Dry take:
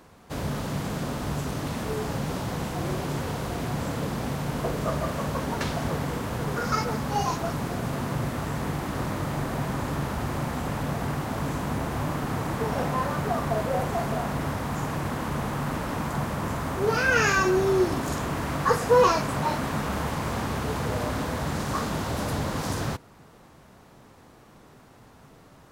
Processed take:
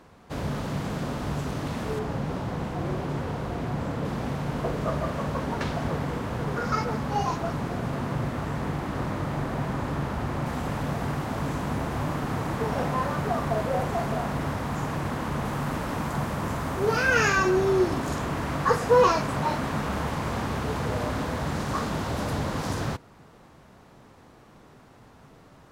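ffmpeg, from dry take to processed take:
ffmpeg -i in.wav -af "asetnsamples=nb_out_samples=441:pad=0,asendcmd='1.99 lowpass f 1900;4.05 lowpass f 3200;10.46 lowpass f 6800;15.45 lowpass f 12000;17.28 lowpass f 6100',lowpass=frequency=4700:poles=1" out.wav

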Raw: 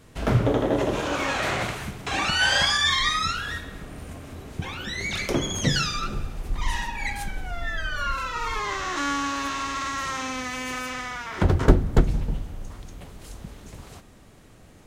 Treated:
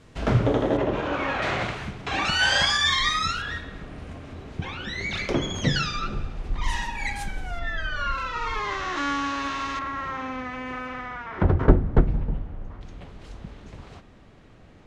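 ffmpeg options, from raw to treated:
ffmpeg -i in.wav -af "asetnsamples=nb_out_samples=441:pad=0,asendcmd='0.77 lowpass f 2600;1.42 lowpass f 4500;2.25 lowpass f 7700;3.42 lowpass f 4400;6.64 lowpass f 9700;7.59 lowpass f 4400;9.79 lowpass f 1800;12.81 lowpass f 3800',lowpass=6400" out.wav

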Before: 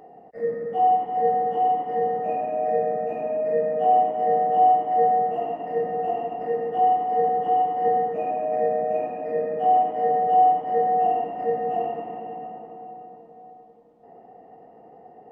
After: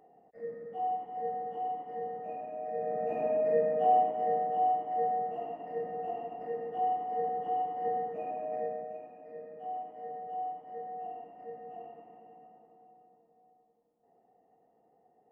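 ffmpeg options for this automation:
ffmpeg -i in.wav -af "volume=-3dB,afade=type=in:start_time=2.74:duration=0.51:silence=0.281838,afade=type=out:start_time=3.25:duration=1.34:silence=0.398107,afade=type=out:start_time=8.54:duration=0.46:silence=0.354813" out.wav

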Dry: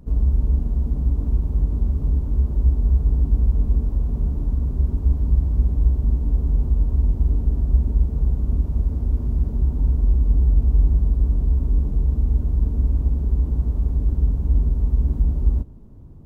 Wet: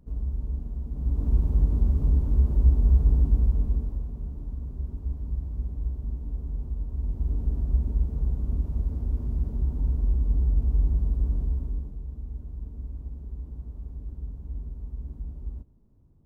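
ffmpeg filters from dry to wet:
ffmpeg -i in.wav -af "volume=4.5dB,afade=type=in:start_time=0.91:duration=0.46:silence=0.316228,afade=type=out:start_time=3.1:duration=1.04:silence=0.281838,afade=type=in:start_time=6.92:duration=0.54:silence=0.501187,afade=type=out:start_time=11.36:duration=0.6:silence=0.298538" out.wav

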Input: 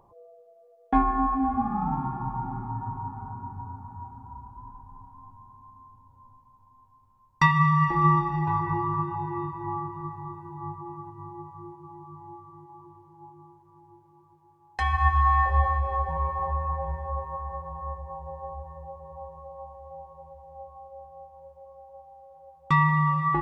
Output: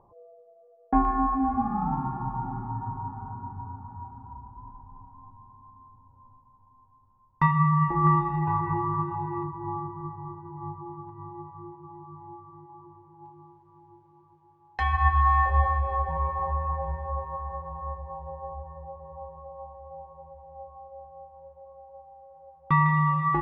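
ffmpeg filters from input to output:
ffmpeg -i in.wav -af "asetnsamples=nb_out_samples=441:pad=0,asendcmd='1.05 lowpass f 2100;4.33 lowpass f 1300;8.07 lowpass f 2000;9.43 lowpass f 1200;11.09 lowpass f 2100;13.26 lowpass f 3700;18.29 lowpass f 2000;22.86 lowpass f 3400',lowpass=1300" out.wav

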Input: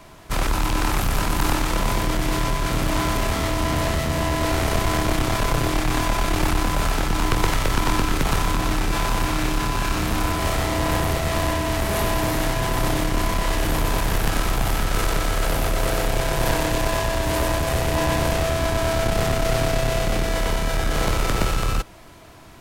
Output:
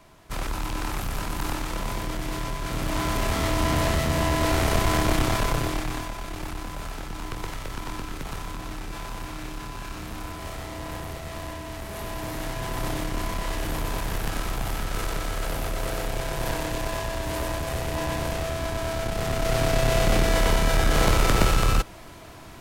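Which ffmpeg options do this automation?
ffmpeg -i in.wav -af "volume=13.5dB,afade=type=in:start_time=2.6:duration=0.99:silence=0.446684,afade=type=out:start_time=5.22:duration=0.91:silence=0.251189,afade=type=in:start_time=11.93:duration=0.94:silence=0.501187,afade=type=in:start_time=19.18:duration=0.93:silence=0.375837" out.wav

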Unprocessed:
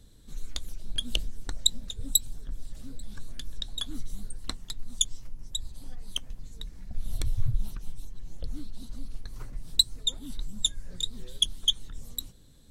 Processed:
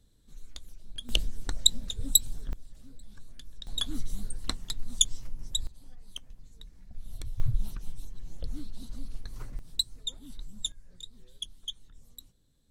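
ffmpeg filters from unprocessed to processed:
ffmpeg -i in.wav -af "asetnsamples=nb_out_samples=441:pad=0,asendcmd='1.09 volume volume 2dB;2.53 volume volume -9dB;3.67 volume volume 2.5dB;5.67 volume volume -9dB;7.4 volume volume -0.5dB;9.59 volume volume -7dB;10.72 volume volume -13.5dB',volume=-9.5dB" out.wav

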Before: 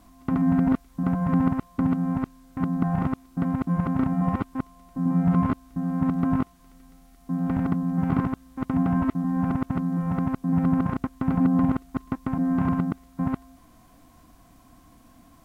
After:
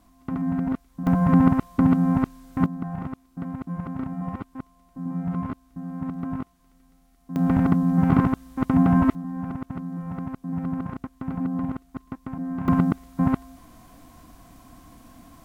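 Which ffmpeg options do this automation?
ffmpeg -i in.wav -af "asetnsamples=nb_out_samples=441:pad=0,asendcmd='1.07 volume volume 5dB;2.66 volume volume -7dB;7.36 volume volume 5dB;9.15 volume volume -6.5dB;12.68 volume volume 5dB',volume=-4.5dB" out.wav

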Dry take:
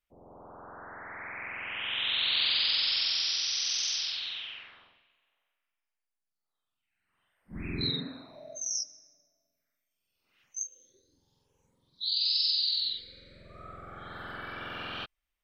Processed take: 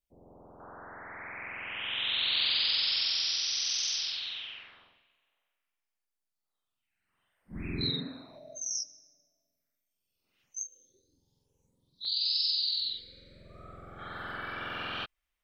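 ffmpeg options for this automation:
ffmpeg -i in.wav -af "asetnsamples=nb_out_samples=441:pad=0,asendcmd='0.6 equalizer g -2;8.38 equalizer g -8.5;10.61 equalizer g -14.5;12.05 equalizer g -5.5;13.99 equalizer g 2.5',equalizer=frequency=1600:width_type=o:width=2.1:gain=-12" out.wav

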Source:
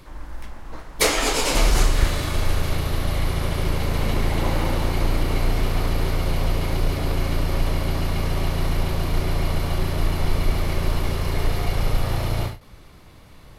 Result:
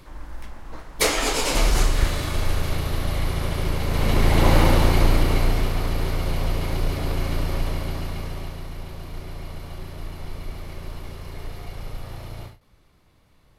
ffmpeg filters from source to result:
ffmpeg -i in.wav -af "volume=6.5dB,afade=type=in:start_time=3.85:duration=0.72:silence=0.398107,afade=type=out:start_time=4.57:duration=1.19:silence=0.375837,afade=type=out:start_time=7.43:duration=1.22:silence=0.298538" out.wav

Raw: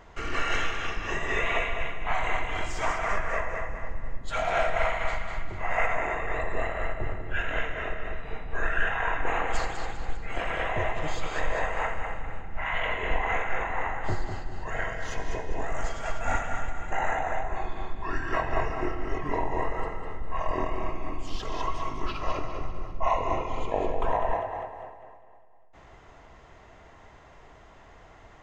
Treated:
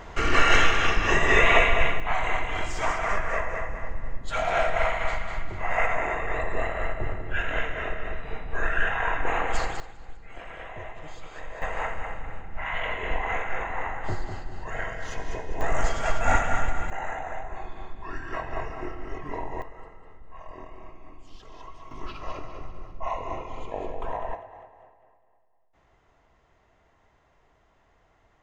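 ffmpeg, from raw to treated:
ffmpeg -i in.wav -af "asetnsamples=nb_out_samples=441:pad=0,asendcmd='2 volume volume 1.5dB;9.8 volume volume -11dB;11.62 volume volume -1dB;15.61 volume volume 6dB;16.9 volume volume -5dB;19.62 volume volume -14dB;21.91 volume volume -5.5dB;24.35 volume volume -12dB',volume=9dB" out.wav

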